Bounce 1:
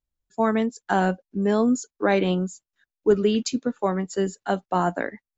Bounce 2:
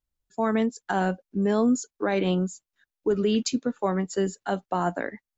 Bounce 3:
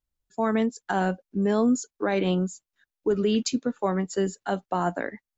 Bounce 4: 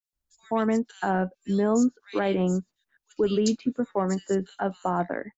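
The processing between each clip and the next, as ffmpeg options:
ffmpeg -i in.wav -af "alimiter=limit=-15dB:level=0:latency=1:release=69" out.wav
ffmpeg -i in.wav -af anull out.wav
ffmpeg -i in.wav -filter_complex "[0:a]acrossover=split=2700[link_01][link_02];[link_01]adelay=130[link_03];[link_03][link_02]amix=inputs=2:normalize=0,adynamicequalizer=threshold=0.00794:dfrequency=1700:dqfactor=0.7:tfrequency=1700:tqfactor=0.7:attack=5:release=100:ratio=0.375:range=2.5:mode=cutabove:tftype=highshelf" out.wav

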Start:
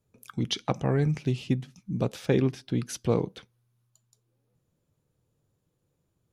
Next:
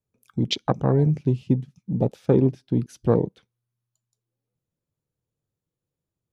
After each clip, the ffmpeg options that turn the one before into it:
ffmpeg -i in.wav -af "afwtdn=0.0251,volume=5.5dB" out.wav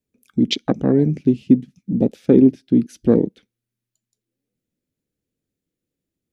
ffmpeg -i in.wav -af "equalizer=frequency=125:width_type=o:width=1:gain=-9,equalizer=frequency=250:width_type=o:width=1:gain=10,equalizer=frequency=1000:width_type=o:width=1:gain=-11,equalizer=frequency=2000:width_type=o:width=1:gain=4,volume=3dB" out.wav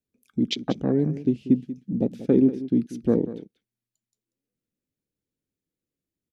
ffmpeg -i in.wav -af "aecho=1:1:188:0.188,volume=-6.5dB" out.wav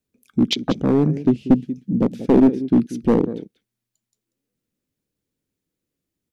ffmpeg -i in.wav -af "aeval=exprs='clip(val(0),-1,0.15)':channel_layout=same,volume=6.5dB" out.wav

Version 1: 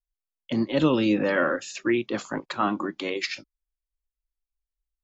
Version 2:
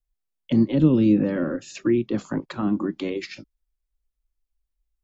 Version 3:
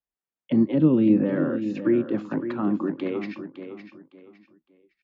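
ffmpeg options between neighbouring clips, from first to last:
ffmpeg -i in.wav -filter_complex "[0:a]lowshelf=frequency=410:gain=10,acrossover=split=380[link_01][link_02];[link_02]acompressor=threshold=-33dB:ratio=6[link_03];[link_01][link_03]amix=inputs=2:normalize=0" out.wav
ffmpeg -i in.wav -filter_complex "[0:a]highpass=160,lowpass=2200,asplit=2[link_01][link_02];[link_02]aecho=0:1:559|1118|1677:0.316|0.0885|0.0248[link_03];[link_01][link_03]amix=inputs=2:normalize=0" out.wav

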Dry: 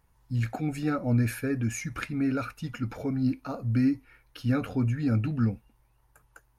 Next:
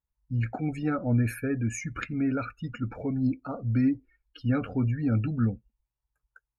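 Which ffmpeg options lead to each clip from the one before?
ffmpeg -i in.wav -af "afftdn=noise_reduction=26:noise_floor=-43" out.wav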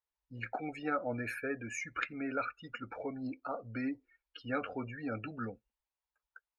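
ffmpeg -i in.wav -filter_complex "[0:a]acrossover=split=400 5200:gain=0.0891 1 0.224[link_01][link_02][link_03];[link_01][link_02][link_03]amix=inputs=3:normalize=0" out.wav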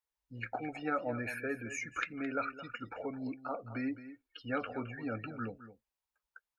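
ffmpeg -i in.wav -af "aecho=1:1:215:0.211" out.wav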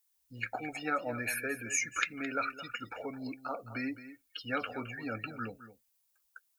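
ffmpeg -i in.wav -af "crystalizer=i=6:c=0,volume=-1.5dB" out.wav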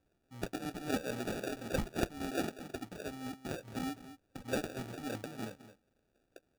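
ffmpeg -i in.wav -af "acrusher=samples=42:mix=1:aa=0.000001,volume=-2dB" out.wav

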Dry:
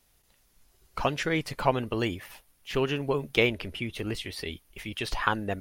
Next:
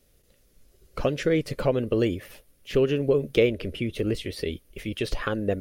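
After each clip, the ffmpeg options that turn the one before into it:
ffmpeg -i in.wav -af "acompressor=threshold=-30dB:ratio=1.5,lowshelf=frequency=650:width_type=q:width=3:gain=6,bandreject=frequency=960:width=13" out.wav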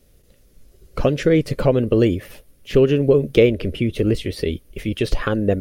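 ffmpeg -i in.wav -af "lowshelf=frequency=460:gain=5.5,volume=4dB" out.wav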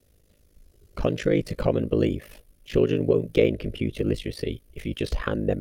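ffmpeg -i in.wav -af "aeval=exprs='val(0)*sin(2*PI*26*n/s)':channel_layout=same,volume=-3.5dB" out.wav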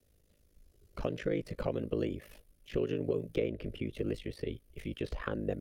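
ffmpeg -i in.wav -filter_complex "[0:a]acrossover=split=330|2700[link_01][link_02][link_03];[link_01]acompressor=threshold=-28dB:ratio=4[link_04];[link_02]acompressor=threshold=-23dB:ratio=4[link_05];[link_03]acompressor=threshold=-48dB:ratio=4[link_06];[link_04][link_05][link_06]amix=inputs=3:normalize=0,volume=-7.5dB" out.wav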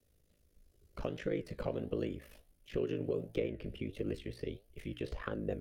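ffmpeg -i in.wav -af "flanger=delay=8.4:depth=9.1:regen=78:speed=1.5:shape=triangular,volume=1.5dB" out.wav

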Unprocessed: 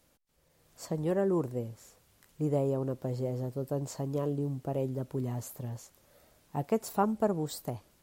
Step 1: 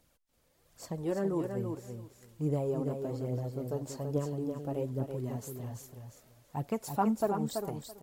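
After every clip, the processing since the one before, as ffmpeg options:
ffmpeg -i in.wav -filter_complex "[0:a]aphaser=in_gain=1:out_gain=1:delay=4.8:decay=0.48:speed=1.2:type=triangular,asplit=2[link_01][link_02];[link_02]aecho=0:1:332|664|996:0.501|0.0852|0.0145[link_03];[link_01][link_03]amix=inputs=2:normalize=0,volume=-3.5dB" out.wav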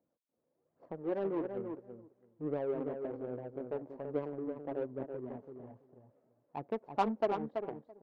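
ffmpeg -i in.wav -af "highpass=310,lowpass=3300,adynamicsmooth=sensitivity=2.5:basefreq=520" out.wav

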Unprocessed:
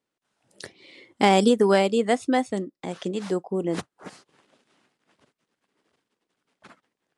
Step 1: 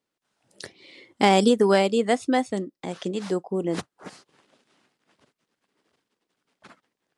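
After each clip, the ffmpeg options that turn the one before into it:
ffmpeg -i in.wav -af "equalizer=frequency=4800:width=1.5:gain=2" out.wav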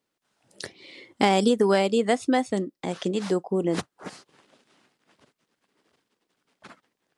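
ffmpeg -i in.wav -af "acompressor=threshold=-22dB:ratio=2,volume=2.5dB" out.wav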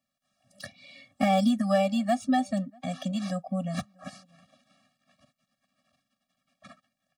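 ffmpeg -i in.wav -filter_complex "[0:a]acrossover=split=180|2200[link_01][link_02][link_03];[link_03]asoftclip=type=tanh:threshold=-32dB[link_04];[link_01][link_02][link_04]amix=inputs=3:normalize=0,asplit=2[link_05][link_06];[link_06]adelay=641.4,volume=-29dB,highshelf=frequency=4000:gain=-14.4[link_07];[link_05][link_07]amix=inputs=2:normalize=0,afftfilt=real='re*eq(mod(floor(b*sr/1024/270),2),0)':imag='im*eq(mod(floor(b*sr/1024/270),2),0)':win_size=1024:overlap=0.75" out.wav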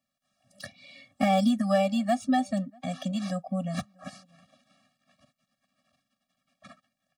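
ffmpeg -i in.wav -af anull out.wav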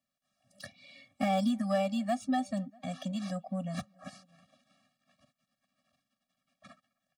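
ffmpeg -i in.wav -filter_complex "[0:a]asplit=2[link_01][link_02];[link_02]asoftclip=type=tanh:threshold=-29dB,volume=-10.5dB[link_03];[link_01][link_03]amix=inputs=2:normalize=0,asplit=2[link_04][link_05];[link_05]adelay=260,highpass=300,lowpass=3400,asoftclip=type=hard:threshold=-20.5dB,volume=-30dB[link_06];[link_04][link_06]amix=inputs=2:normalize=0,volume=-6.5dB" out.wav

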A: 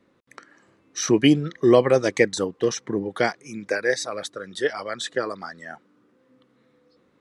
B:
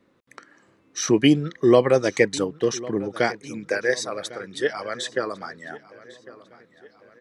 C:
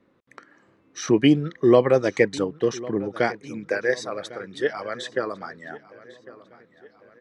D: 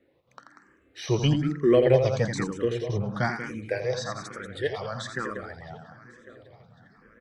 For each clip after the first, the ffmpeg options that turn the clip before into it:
ffmpeg -i in.wav -filter_complex "[0:a]asplit=2[link_01][link_02];[link_02]adelay=1101,lowpass=frequency=5000:poles=1,volume=-19dB,asplit=2[link_03][link_04];[link_04]adelay=1101,lowpass=frequency=5000:poles=1,volume=0.49,asplit=2[link_05][link_06];[link_06]adelay=1101,lowpass=frequency=5000:poles=1,volume=0.49,asplit=2[link_07][link_08];[link_08]adelay=1101,lowpass=frequency=5000:poles=1,volume=0.49[link_09];[link_01][link_03][link_05][link_07][link_09]amix=inputs=5:normalize=0" out.wav
ffmpeg -i in.wav -af "lowpass=frequency=2800:poles=1" out.wav
ffmpeg -i in.wav -filter_complex "[0:a]asubboost=boost=12:cutoff=100,aecho=1:1:84.55|189.5:0.447|0.355,asplit=2[link_01][link_02];[link_02]afreqshift=1.1[link_03];[link_01][link_03]amix=inputs=2:normalize=1" out.wav

